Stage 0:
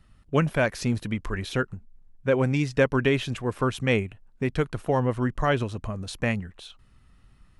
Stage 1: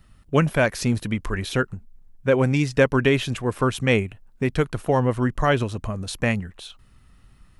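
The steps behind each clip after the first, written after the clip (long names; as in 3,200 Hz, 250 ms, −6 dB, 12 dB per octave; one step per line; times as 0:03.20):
high-shelf EQ 10,000 Hz +8 dB
level +3.5 dB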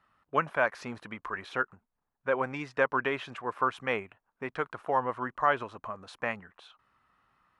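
resonant band-pass 1,100 Hz, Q 1.7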